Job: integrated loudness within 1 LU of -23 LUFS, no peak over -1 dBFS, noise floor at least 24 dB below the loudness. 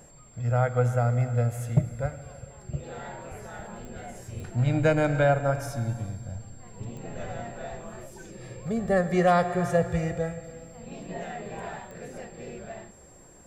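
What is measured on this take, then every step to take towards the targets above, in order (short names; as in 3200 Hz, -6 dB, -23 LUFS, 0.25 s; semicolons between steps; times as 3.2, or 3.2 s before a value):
clicks 4; steady tone 7500 Hz; tone level -54 dBFS; loudness -27.0 LUFS; peak -11.0 dBFS; loudness target -23.0 LUFS
-> de-click; notch 7500 Hz, Q 30; gain +4 dB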